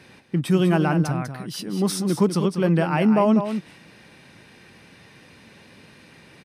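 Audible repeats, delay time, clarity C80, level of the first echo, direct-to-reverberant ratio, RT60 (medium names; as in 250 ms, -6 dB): 1, 197 ms, no reverb, -8.5 dB, no reverb, no reverb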